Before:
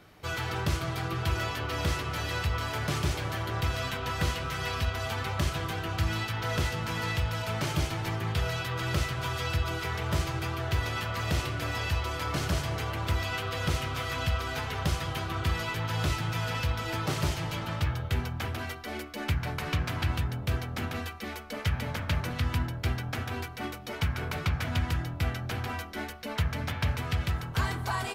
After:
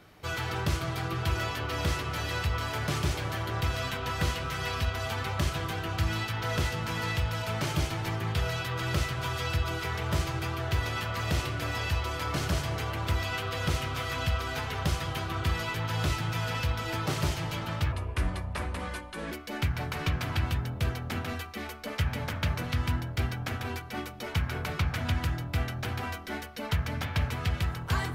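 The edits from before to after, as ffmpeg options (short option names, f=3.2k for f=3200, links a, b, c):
-filter_complex "[0:a]asplit=3[a][b][c];[a]atrim=end=17.924[d];[b]atrim=start=17.92:end=18.98,asetpts=PTS-STARTPTS,asetrate=33516,aresample=44100[e];[c]atrim=start=18.976[f];[d][e]acrossfade=d=0.004:c1=hsin:c2=hsin[g];[g][f]acrossfade=d=0.004:c1=hsin:c2=hsin"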